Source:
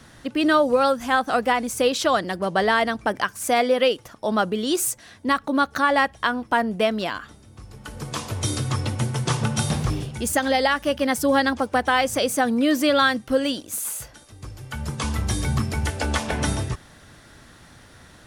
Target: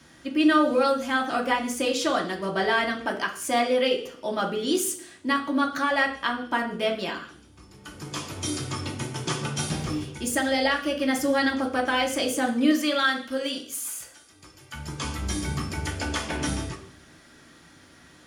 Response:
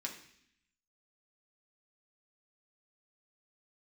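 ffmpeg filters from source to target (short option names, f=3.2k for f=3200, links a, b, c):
-filter_complex "[0:a]asettb=1/sr,asplit=3[a][b][c];[a]atrim=end=12.714[d];[b]atrim=start=12.71:end=14.74,asetpts=PTS-STARTPTS,afade=t=in:d=0.004:c=qsin,afade=t=out:st=2.026:d=0.004:c=qsin,lowshelf=f=390:g=-9[e];[c]atrim=start=14.736[f];[d][e]acrossfade=d=0.004:c1=hsin:c2=qsin[g];[g][f]acrossfade=d=0.004:c1=qsin:c2=hsin[h];[1:a]atrim=start_sample=2205,asetrate=57330,aresample=44100[i];[h][i]afir=irnorm=-1:irlink=0"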